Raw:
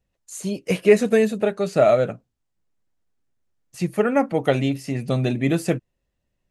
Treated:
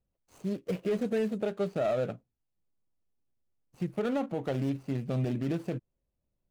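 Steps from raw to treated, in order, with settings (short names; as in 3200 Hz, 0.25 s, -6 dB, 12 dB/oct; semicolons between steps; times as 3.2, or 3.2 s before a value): median filter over 25 samples; limiter -16.5 dBFS, peak gain reduction 11.5 dB; gain -6 dB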